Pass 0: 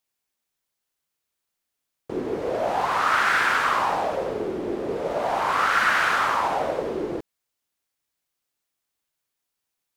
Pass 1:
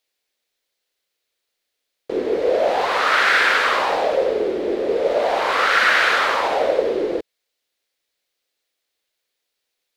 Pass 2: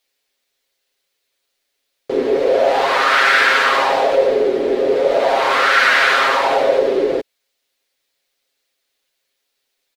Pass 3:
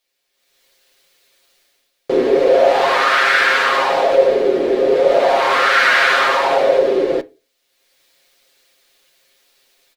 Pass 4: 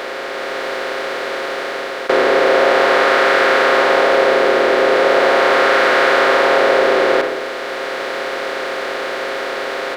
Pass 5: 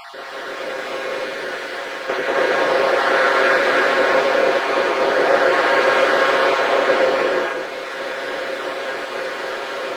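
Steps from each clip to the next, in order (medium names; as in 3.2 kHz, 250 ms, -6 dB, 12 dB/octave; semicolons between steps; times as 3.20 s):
graphic EQ 125/500/1000/2000/4000 Hz -10/+11/-3/+6/+9 dB
comb 7.4 ms, depth 69%; in parallel at -3 dB: peak limiter -12.5 dBFS, peak gain reduction 9.5 dB; on the sum: trim -1 dB
level rider gain up to 16.5 dB; reverberation, pre-delay 6 ms, DRR 9.5 dB; trim -2.5 dB
spectral levelling over time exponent 0.2; trim -7.5 dB
random holes in the spectrogram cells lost 29%; gated-style reverb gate 340 ms rising, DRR -4 dB; trim -7 dB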